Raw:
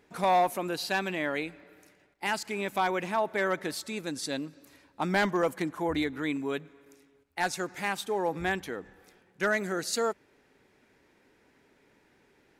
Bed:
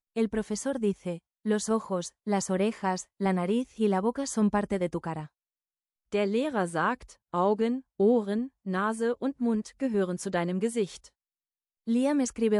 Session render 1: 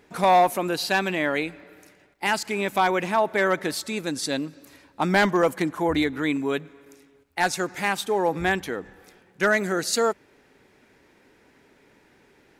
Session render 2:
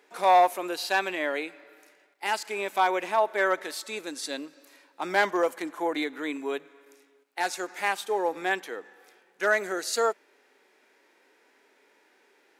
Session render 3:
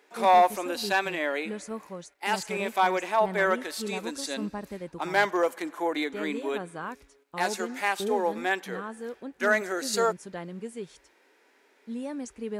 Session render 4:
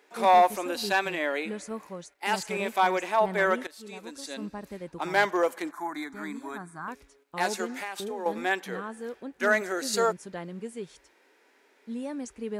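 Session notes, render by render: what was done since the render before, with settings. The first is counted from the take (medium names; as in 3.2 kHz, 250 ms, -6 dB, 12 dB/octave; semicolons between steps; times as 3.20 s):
trim +6.5 dB
Bessel high-pass 470 Hz, order 4; harmonic-percussive split percussive -7 dB
add bed -9.5 dB
3.67–5.04 s: fade in, from -15.5 dB; 5.71–6.88 s: static phaser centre 1.2 kHz, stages 4; 7.77–8.26 s: compression, threshold -31 dBFS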